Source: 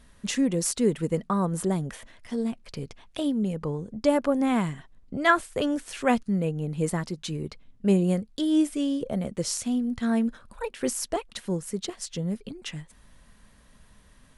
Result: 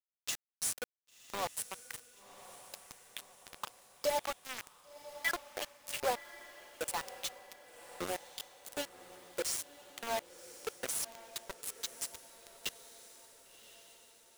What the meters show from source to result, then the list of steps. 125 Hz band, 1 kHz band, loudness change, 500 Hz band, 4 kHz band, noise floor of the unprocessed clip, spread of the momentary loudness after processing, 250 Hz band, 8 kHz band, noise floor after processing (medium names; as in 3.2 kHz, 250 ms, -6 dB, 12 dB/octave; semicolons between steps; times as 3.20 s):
-30.5 dB, -9.5 dB, -12.0 dB, -13.0 dB, -5.0 dB, -56 dBFS, 18 LU, -29.5 dB, -5.0 dB, under -85 dBFS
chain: octave divider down 1 oct, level -2 dB; expander -40 dBFS; pre-emphasis filter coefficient 0.9; spectral gate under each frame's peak -25 dB strong; peaking EQ 730 Hz +14 dB 2.4 oct; compression 2:1, threshold -45 dBFS, peak gain reduction 14 dB; LFO high-pass saw up 1.5 Hz 410–2500 Hz; flange 0.73 Hz, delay 7.8 ms, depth 2.7 ms, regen +29%; bit crusher 7-bit; on a send: echo that smears into a reverb 1082 ms, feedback 55%, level -14.5 dB; on the sum: trim +6.5 dB